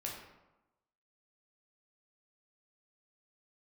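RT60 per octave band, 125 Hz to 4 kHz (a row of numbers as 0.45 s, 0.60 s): 0.95 s, 1.0 s, 0.95 s, 1.0 s, 0.80 s, 0.60 s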